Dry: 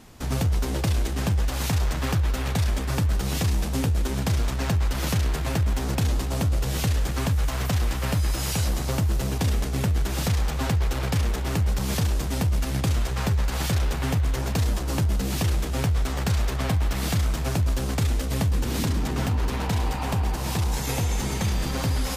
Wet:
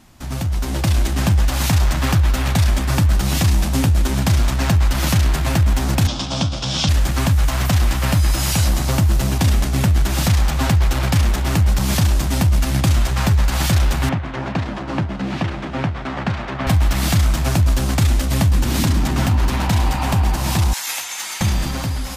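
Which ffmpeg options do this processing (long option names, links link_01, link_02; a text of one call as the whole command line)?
ffmpeg -i in.wav -filter_complex "[0:a]asettb=1/sr,asplit=3[link_01][link_02][link_03];[link_01]atrim=end=6.074[link_04];[link_02]atrim=start=6.07:end=6.89,asetpts=PTS-STARTPTS,afade=type=in:duration=0.004:curve=qsin,afade=type=out:start_time=0.816:duration=0.004:curve=qsin,highpass=120,equalizer=frequency=380:width_type=q:width=4:gain=-7,equalizer=frequency=1900:width_type=q:width=4:gain=-8,equalizer=frequency=3400:width_type=q:width=4:gain=10,equalizer=frequency=5300:width_type=q:width=4:gain=8,lowpass=frequency=6800:width=0.5412,lowpass=frequency=6800:width=1.3066[link_05];[link_03]atrim=start=6.886[link_06];[link_04][link_05]acrossfade=duration=0.004:curve1=hsin:curve2=qsin[link_07];[link_07][link_06]acrossfade=duration=0.004:curve1=qsin:curve2=hsin,asettb=1/sr,asplit=3[link_08][link_09][link_10];[link_08]atrim=end=14.094[link_11];[link_09]atrim=start=14.09:end=16.67,asetpts=PTS-STARTPTS,afade=type=in:duration=0.004:curve=qsin,afade=type=out:start_time=2.576:duration=0.004:curve=qsin,highpass=150,lowpass=2400[link_12];[link_10]atrim=start=16.666[link_13];[link_11][link_12]acrossfade=duration=0.004:curve1=hsin:curve2=qsin[link_14];[link_14][link_13]acrossfade=duration=0.004:curve1=qsin:curve2=hsin,asettb=1/sr,asplit=3[link_15][link_16][link_17];[link_15]atrim=end=20.734[link_18];[link_16]atrim=start=20.73:end=21.41,asetpts=PTS-STARTPTS,afade=type=in:duration=0.004:curve=qsin,afade=type=out:start_time=0.676:duration=0.004:curve=qsin,highpass=1300[link_19];[link_17]atrim=start=21.406[link_20];[link_18][link_19]acrossfade=duration=0.004:curve1=hsin:curve2=qsin[link_21];[link_21][link_20]acrossfade=duration=0.004:curve1=qsin:curve2=hsin,dynaudnorm=framelen=160:gausssize=9:maxgain=8dB,equalizer=frequency=450:width=5.5:gain=-13" out.wav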